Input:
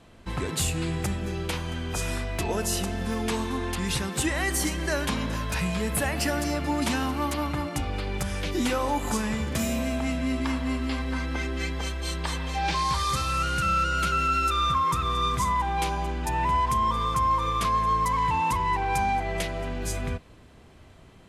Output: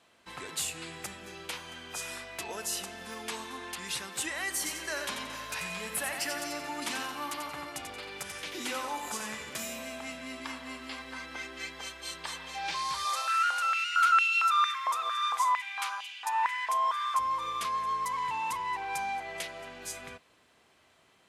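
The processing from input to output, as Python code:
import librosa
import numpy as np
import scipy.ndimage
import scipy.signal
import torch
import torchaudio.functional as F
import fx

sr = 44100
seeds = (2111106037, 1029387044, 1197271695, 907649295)

y = fx.echo_feedback(x, sr, ms=89, feedback_pct=34, wet_db=-6, at=(4.57, 9.58))
y = fx.filter_held_highpass(y, sr, hz=4.4, low_hz=670.0, high_hz=2800.0, at=(13.05, 17.19))
y = fx.highpass(y, sr, hz=1100.0, slope=6)
y = F.gain(torch.from_numpy(y), -4.0).numpy()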